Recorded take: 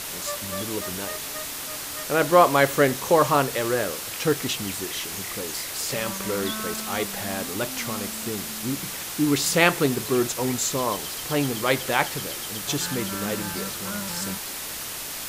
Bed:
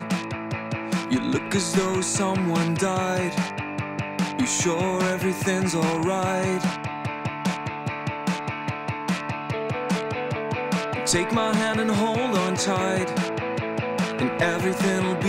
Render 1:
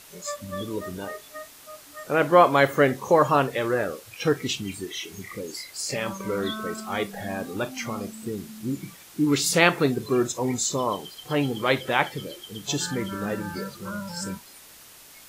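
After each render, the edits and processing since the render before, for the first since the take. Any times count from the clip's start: noise print and reduce 15 dB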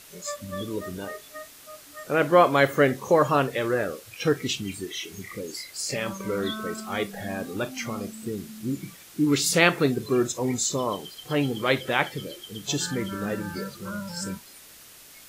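peaking EQ 900 Hz -4 dB 0.69 oct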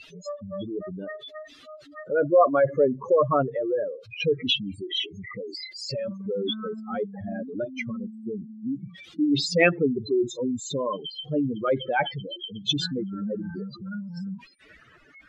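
spectral contrast enhancement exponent 3.5; low-pass sweep 3.6 kHz -> 1.6 kHz, 14.18–14.91 s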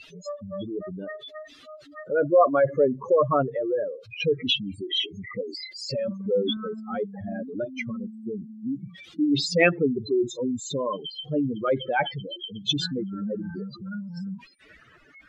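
4.80–6.57 s: small resonant body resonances 250/500/3200 Hz, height 7 dB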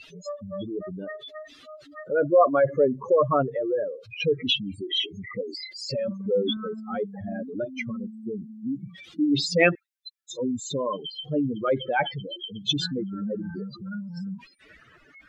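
9.75–10.31 s: steep high-pass 1.6 kHz 72 dB/octave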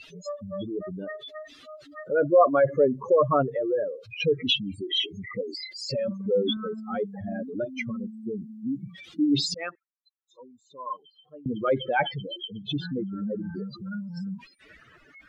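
7.32–8.30 s: short-mantissa float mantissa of 8-bit; 9.54–11.46 s: band-pass filter 1.1 kHz, Q 4.5; 12.47–13.55 s: distance through air 410 m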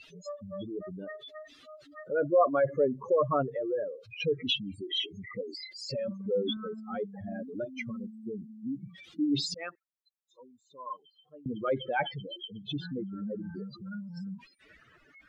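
trim -5.5 dB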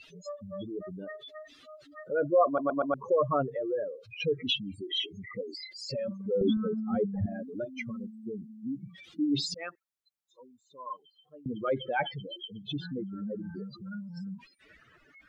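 2.46 s: stutter in place 0.12 s, 4 plays; 6.41–7.26 s: tilt EQ -4.5 dB/octave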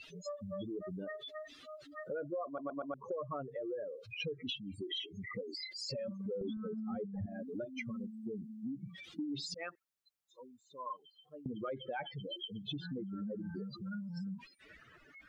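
compression 6:1, threshold -38 dBFS, peak gain reduction 18 dB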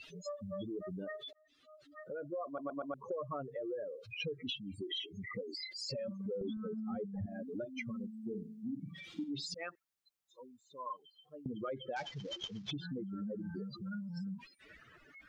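1.33–2.54 s: fade in; 8.23–9.31 s: flutter echo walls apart 8.3 m, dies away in 0.38 s; 11.96–12.71 s: CVSD coder 32 kbps

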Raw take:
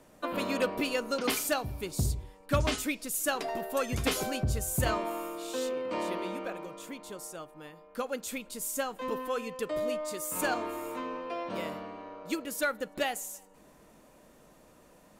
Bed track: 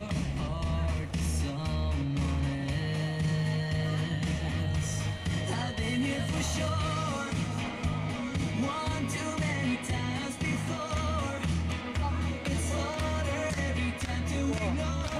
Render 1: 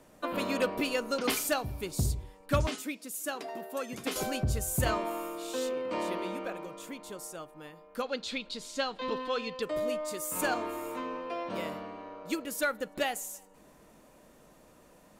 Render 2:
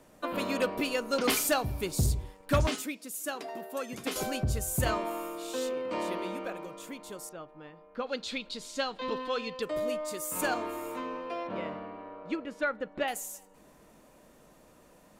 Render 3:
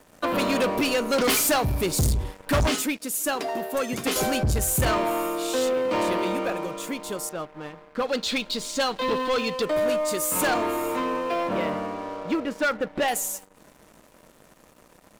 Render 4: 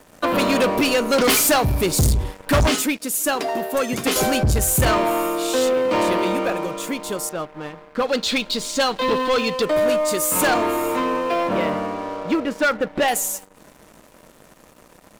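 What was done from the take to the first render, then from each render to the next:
2.67–4.16 s: ladder high-pass 160 Hz, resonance 25%; 8.02–9.62 s: resonant low-pass 4.1 kHz, resonance Q 3.8
1.13–2.86 s: waveshaping leveller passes 1; 7.29–8.07 s: distance through air 250 m; 11.47–13.08 s: low-pass 2.5 kHz
waveshaping leveller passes 3
trim +5 dB

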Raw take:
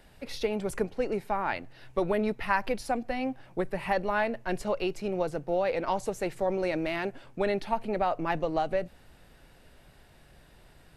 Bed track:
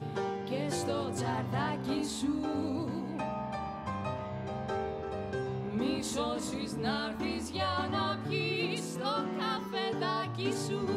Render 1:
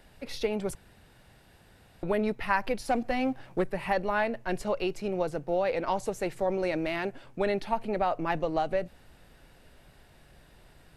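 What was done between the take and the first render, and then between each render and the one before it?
0.75–2.03 s: room tone; 2.88–3.64 s: waveshaping leveller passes 1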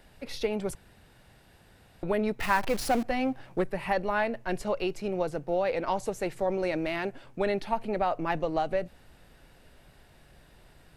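2.40–3.03 s: jump at every zero crossing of -31.5 dBFS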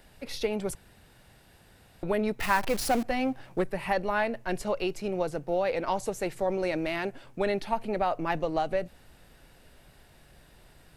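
treble shelf 5.2 kHz +4.5 dB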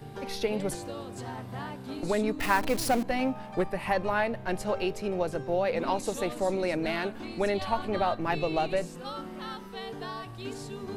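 add bed track -5.5 dB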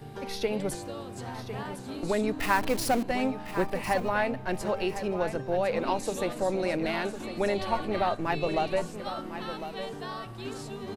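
feedback delay 1054 ms, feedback 20%, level -11 dB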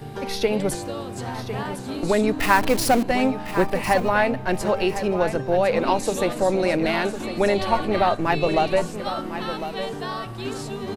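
trim +7.5 dB

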